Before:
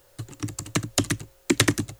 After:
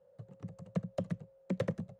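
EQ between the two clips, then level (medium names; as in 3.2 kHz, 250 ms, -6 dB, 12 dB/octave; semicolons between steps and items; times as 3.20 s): two resonant band-passes 310 Hz, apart 1.5 oct; +2.0 dB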